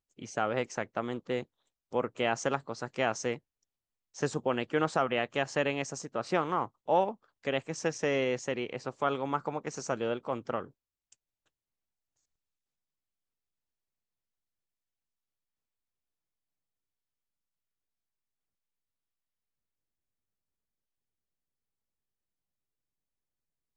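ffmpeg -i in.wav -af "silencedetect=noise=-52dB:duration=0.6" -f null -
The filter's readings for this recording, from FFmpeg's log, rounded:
silence_start: 3.38
silence_end: 4.15 | silence_duration: 0.76
silence_start: 11.13
silence_end: 23.76 | silence_duration: 12.63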